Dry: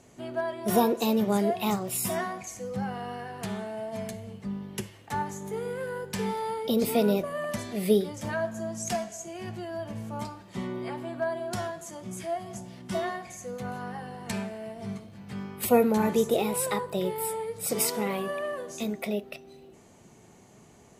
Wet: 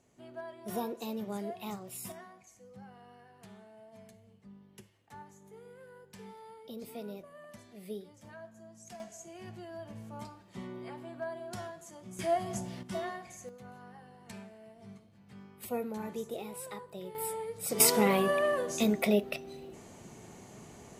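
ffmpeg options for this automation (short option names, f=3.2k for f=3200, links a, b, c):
-af "asetnsamples=n=441:p=0,asendcmd='2.12 volume volume -19dB;9 volume volume -9dB;12.19 volume volume 2.5dB;12.83 volume volume -6.5dB;13.49 volume volume -14.5dB;17.15 volume volume -5dB;17.8 volume volume 4dB',volume=-13dB"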